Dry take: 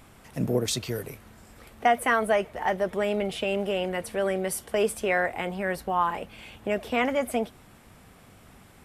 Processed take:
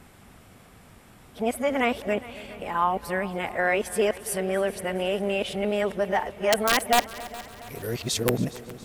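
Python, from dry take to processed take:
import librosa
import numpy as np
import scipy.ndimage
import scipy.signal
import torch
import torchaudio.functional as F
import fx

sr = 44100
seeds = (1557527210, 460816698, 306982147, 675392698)

y = np.flip(x).copy()
y = (np.mod(10.0 ** (12.5 / 20.0) * y + 1.0, 2.0) - 1.0) / 10.0 ** (12.5 / 20.0)
y = fx.echo_heads(y, sr, ms=138, heads='second and third', feedback_pct=54, wet_db=-19.0)
y = y * librosa.db_to_amplitude(1.0)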